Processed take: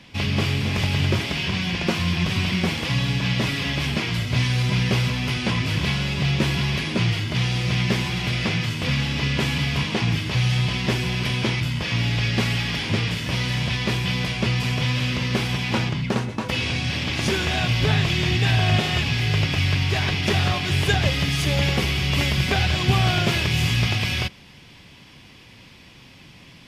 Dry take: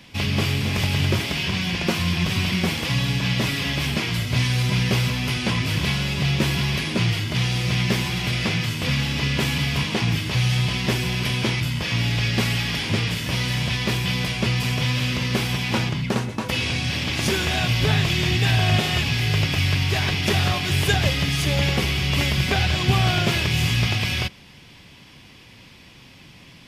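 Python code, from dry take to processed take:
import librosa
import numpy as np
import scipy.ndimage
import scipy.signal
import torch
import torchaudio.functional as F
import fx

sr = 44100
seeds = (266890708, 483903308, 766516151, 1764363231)

y = fx.high_shelf(x, sr, hz=10000.0, db=fx.steps((0.0, -12.0), (21.12, -4.0)))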